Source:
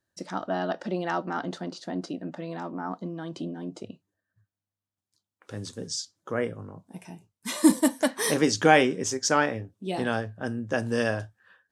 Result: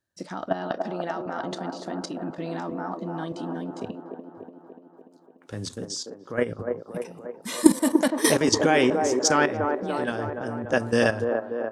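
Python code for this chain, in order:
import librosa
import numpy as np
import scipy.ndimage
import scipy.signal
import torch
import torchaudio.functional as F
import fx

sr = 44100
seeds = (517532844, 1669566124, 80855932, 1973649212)

y = fx.high_shelf(x, sr, hz=5100.0, db=5.0, at=(1.71, 3.64))
y = fx.level_steps(y, sr, step_db=13)
y = fx.echo_wet_bandpass(y, sr, ms=292, feedback_pct=63, hz=580.0, wet_db=-3.0)
y = y * librosa.db_to_amplitude(6.5)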